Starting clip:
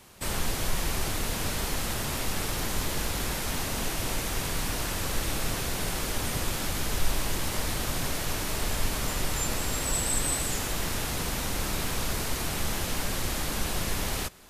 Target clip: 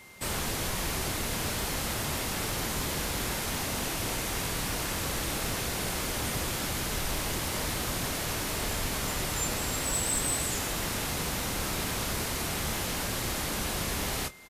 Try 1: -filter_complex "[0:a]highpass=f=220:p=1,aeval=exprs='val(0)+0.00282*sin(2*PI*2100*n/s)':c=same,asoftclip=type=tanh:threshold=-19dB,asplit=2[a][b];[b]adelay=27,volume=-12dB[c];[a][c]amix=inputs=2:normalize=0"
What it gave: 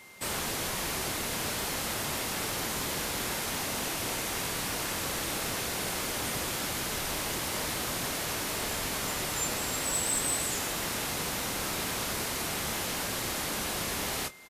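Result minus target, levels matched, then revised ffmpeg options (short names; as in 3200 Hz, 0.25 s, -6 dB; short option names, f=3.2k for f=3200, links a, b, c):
125 Hz band -5.5 dB
-filter_complex "[0:a]highpass=f=58:p=1,aeval=exprs='val(0)+0.00282*sin(2*PI*2100*n/s)':c=same,asoftclip=type=tanh:threshold=-19dB,asplit=2[a][b];[b]adelay=27,volume=-12dB[c];[a][c]amix=inputs=2:normalize=0"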